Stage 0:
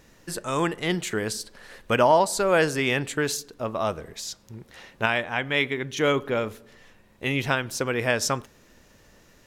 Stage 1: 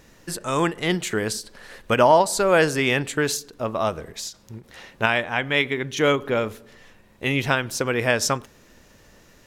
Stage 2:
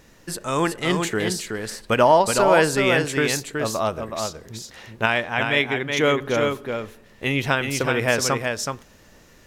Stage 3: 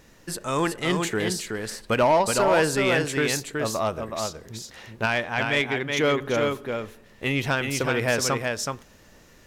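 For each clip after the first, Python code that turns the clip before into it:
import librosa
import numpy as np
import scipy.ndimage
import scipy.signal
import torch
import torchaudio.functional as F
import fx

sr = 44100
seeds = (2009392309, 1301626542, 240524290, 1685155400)

y1 = fx.end_taper(x, sr, db_per_s=270.0)
y1 = y1 * 10.0 ** (3.0 / 20.0)
y2 = y1 + 10.0 ** (-5.0 / 20.0) * np.pad(y1, (int(373 * sr / 1000.0), 0))[:len(y1)]
y3 = 10.0 ** (-11.0 / 20.0) * np.tanh(y2 / 10.0 ** (-11.0 / 20.0))
y3 = y3 * 10.0 ** (-1.5 / 20.0)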